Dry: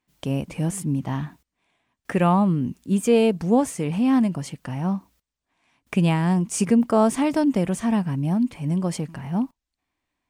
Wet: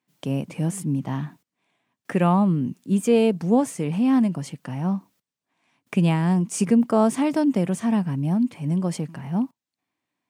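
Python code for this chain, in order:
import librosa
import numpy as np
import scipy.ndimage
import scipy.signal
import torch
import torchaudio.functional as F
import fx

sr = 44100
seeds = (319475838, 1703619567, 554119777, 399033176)

y = scipy.signal.sosfilt(scipy.signal.butter(4, 120.0, 'highpass', fs=sr, output='sos'), x)
y = fx.low_shelf(y, sr, hz=390.0, db=3.0)
y = y * librosa.db_to_amplitude(-2.0)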